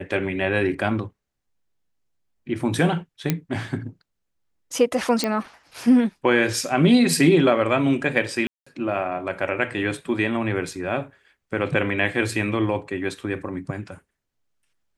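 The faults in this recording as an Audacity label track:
3.300000	3.300000	pop -6 dBFS
5.240000	5.240000	pop -8 dBFS
8.470000	8.660000	dropout 195 ms

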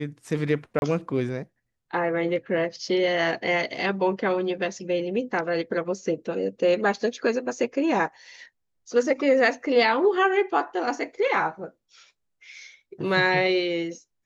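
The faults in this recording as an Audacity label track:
0.790000	0.820000	dropout 31 ms

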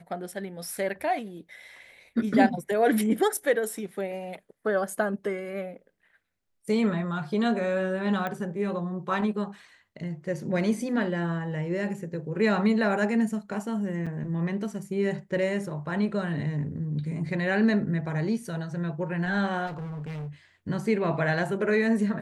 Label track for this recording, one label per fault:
8.270000	8.270000	pop -19 dBFS
14.060000	14.070000	dropout 6.2 ms
19.660000	20.290000	clipped -33 dBFS

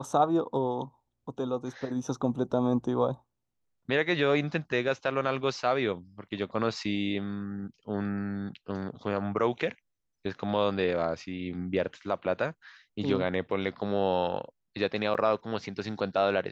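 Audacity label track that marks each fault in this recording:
15.140000	15.150000	dropout 7.2 ms

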